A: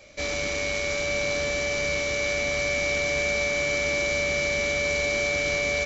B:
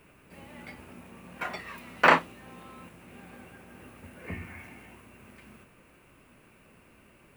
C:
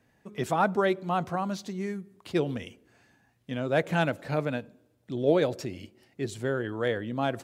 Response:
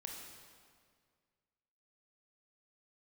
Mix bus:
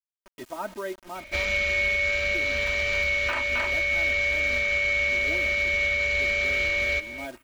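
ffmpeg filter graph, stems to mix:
-filter_complex "[0:a]firequalizer=gain_entry='entry(190,0);entry(300,-21);entry(430,-2);entry(780,-10);entry(1400,0);entry(2100,6);entry(5500,-10)':delay=0.05:min_phase=1,adelay=1150,volume=1.33,asplit=2[s0][s1];[s1]volume=0.168[s2];[1:a]tiltshelf=f=1200:g=-5.5,adelay=1250,volume=0.531,asplit=2[s3][s4];[s4]volume=0.668[s5];[2:a]bass=f=250:g=-3,treble=f=4000:g=-6,acrusher=bits=5:mix=0:aa=0.000001,volume=0.282[s6];[s2][s5]amix=inputs=2:normalize=0,aecho=0:1:267:1[s7];[s0][s3][s6][s7]amix=inputs=4:normalize=0,aecho=1:1:3.2:0.85,alimiter=limit=0.15:level=0:latency=1:release=498"

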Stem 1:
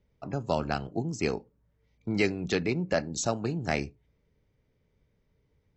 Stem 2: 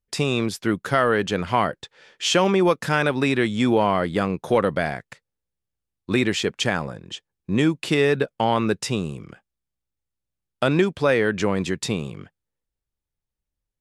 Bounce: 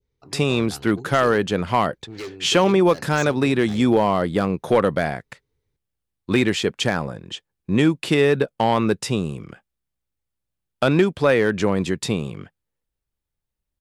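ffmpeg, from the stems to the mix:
-filter_complex "[0:a]equalizer=f=200:t=o:w=0.33:g=-11,equalizer=f=400:t=o:w=0.33:g=6,equalizer=f=630:t=o:w=0.33:g=-11,equalizer=f=4000:t=o:w=0.33:g=8,equalizer=f=6300:t=o:w=0.33:g=6,asoftclip=type=hard:threshold=0.0631,volume=0.531[s0];[1:a]equalizer=f=6200:w=1.5:g=-3,asoftclip=type=hard:threshold=0.299,adelay=200,volume=1.33[s1];[s0][s1]amix=inputs=2:normalize=0,adynamicequalizer=threshold=0.0224:dfrequency=2100:dqfactor=0.79:tfrequency=2100:tqfactor=0.79:attack=5:release=100:ratio=0.375:range=2.5:mode=cutabove:tftype=bell"

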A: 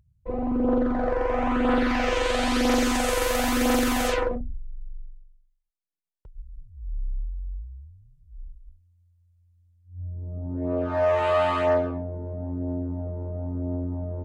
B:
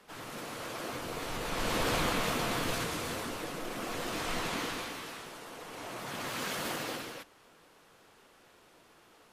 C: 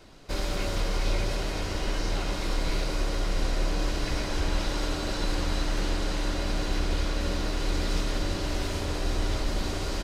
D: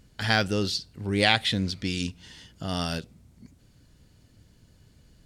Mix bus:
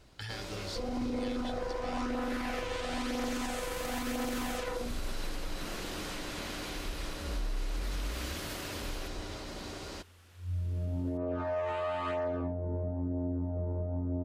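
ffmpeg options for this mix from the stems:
-filter_complex "[0:a]acompressor=threshold=0.0501:ratio=6,adelay=500,volume=1.06[s0];[1:a]adelay=1850,volume=1.19[s1];[2:a]highpass=f=120:p=1,volume=0.355[s2];[3:a]aecho=1:1:2.3:0.65,volume=0.501,asplit=2[s3][s4];[s4]apad=whole_len=492763[s5];[s1][s5]sidechaincompress=threshold=0.00631:ratio=8:attack=16:release=359[s6];[s6][s3]amix=inputs=2:normalize=0,equalizer=f=670:t=o:w=2.3:g=-8,acompressor=threshold=0.0112:ratio=6,volume=1[s7];[s0][s2][s7]amix=inputs=3:normalize=0,alimiter=level_in=1.33:limit=0.0631:level=0:latency=1:release=167,volume=0.75"

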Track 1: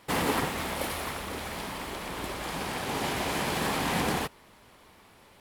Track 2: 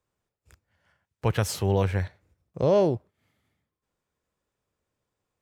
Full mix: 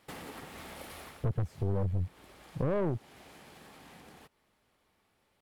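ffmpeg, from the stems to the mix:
-filter_complex "[0:a]bandreject=f=990:w=12,acompressor=threshold=0.02:ratio=6,volume=0.501,afade=t=out:st=0.98:d=0.26:silence=0.375837[s0];[1:a]afwtdn=0.0316,tiltshelf=f=740:g=7,volume=1.06[s1];[s0][s1]amix=inputs=2:normalize=0,aeval=exprs='(tanh(7.08*val(0)+0.55)-tanh(0.55))/7.08':c=same,acompressor=threshold=0.0224:ratio=2"

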